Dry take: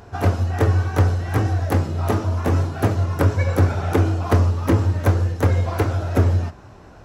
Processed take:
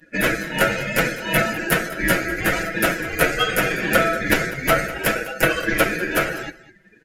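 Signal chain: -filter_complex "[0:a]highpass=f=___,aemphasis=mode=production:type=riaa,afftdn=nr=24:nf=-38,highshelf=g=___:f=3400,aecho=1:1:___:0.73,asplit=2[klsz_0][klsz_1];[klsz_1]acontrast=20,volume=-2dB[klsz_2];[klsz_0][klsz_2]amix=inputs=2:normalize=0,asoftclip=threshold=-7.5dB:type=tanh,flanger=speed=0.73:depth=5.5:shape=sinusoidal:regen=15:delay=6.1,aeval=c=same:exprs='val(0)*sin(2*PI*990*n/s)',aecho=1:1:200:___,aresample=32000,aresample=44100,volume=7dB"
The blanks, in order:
390, -10.5, 6.2, 0.126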